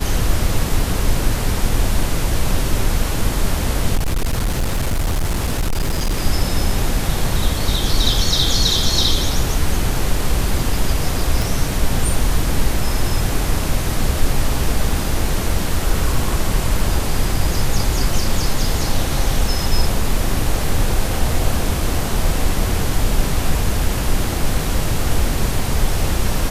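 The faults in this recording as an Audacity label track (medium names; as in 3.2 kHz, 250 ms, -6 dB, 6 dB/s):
3.950000	6.190000	clipped -14.5 dBFS
11.420000	11.420000	pop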